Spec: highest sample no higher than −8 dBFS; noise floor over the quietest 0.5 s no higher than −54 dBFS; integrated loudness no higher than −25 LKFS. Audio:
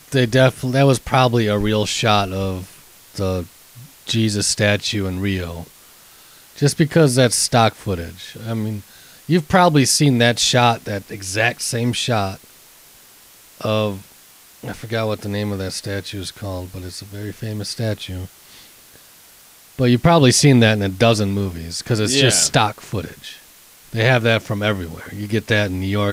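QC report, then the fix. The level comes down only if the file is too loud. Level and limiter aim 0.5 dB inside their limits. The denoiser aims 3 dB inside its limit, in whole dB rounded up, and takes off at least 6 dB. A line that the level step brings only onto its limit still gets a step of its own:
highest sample −2.5 dBFS: out of spec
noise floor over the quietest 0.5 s −47 dBFS: out of spec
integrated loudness −18.0 LKFS: out of spec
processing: level −7.5 dB

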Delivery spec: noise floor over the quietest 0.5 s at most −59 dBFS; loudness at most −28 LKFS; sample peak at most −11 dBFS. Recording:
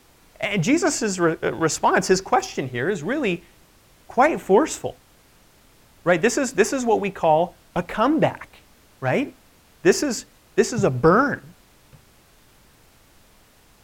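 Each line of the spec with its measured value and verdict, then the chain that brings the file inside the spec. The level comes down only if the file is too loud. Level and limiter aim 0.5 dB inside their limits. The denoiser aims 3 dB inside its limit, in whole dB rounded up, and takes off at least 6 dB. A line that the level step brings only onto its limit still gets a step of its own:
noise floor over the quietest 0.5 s −54 dBFS: out of spec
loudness −21.5 LKFS: out of spec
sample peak −4.0 dBFS: out of spec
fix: level −7 dB
brickwall limiter −11.5 dBFS

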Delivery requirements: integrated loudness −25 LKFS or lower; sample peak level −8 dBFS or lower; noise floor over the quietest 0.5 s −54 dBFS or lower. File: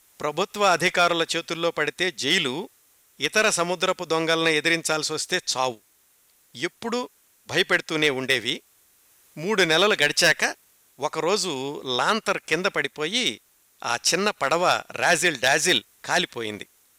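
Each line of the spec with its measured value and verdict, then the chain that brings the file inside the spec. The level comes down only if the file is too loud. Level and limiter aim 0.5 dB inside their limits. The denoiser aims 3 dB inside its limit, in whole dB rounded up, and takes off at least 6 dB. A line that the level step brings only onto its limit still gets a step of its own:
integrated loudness −22.5 LKFS: out of spec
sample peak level −9.0 dBFS: in spec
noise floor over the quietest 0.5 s −61 dBFS: in spec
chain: level −3 dB

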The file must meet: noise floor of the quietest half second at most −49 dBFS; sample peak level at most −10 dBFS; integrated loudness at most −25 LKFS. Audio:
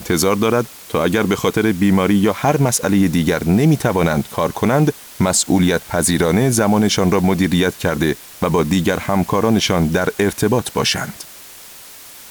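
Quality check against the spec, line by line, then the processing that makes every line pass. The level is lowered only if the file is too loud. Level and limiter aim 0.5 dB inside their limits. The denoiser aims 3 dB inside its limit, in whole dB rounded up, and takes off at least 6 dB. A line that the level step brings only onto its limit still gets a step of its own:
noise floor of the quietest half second −38 dBFS: out of spec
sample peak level −5.0 dBFS: out of spec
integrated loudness −16.5 LKFS: out of spec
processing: broadband denoise 6 dB, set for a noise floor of −38 dBFS
level −9 dB

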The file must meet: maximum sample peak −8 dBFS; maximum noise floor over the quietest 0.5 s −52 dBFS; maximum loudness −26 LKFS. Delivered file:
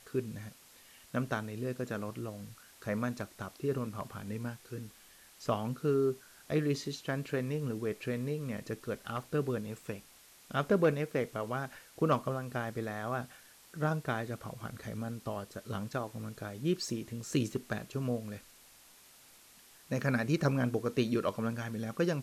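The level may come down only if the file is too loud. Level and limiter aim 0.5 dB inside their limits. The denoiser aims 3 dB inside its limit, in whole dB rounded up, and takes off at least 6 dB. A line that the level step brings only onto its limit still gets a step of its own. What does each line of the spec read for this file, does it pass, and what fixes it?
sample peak −18.0 dBFS: in spec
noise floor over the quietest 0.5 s −59 dBFS: in spec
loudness −35.5 LKFS: in spec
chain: no processing needed

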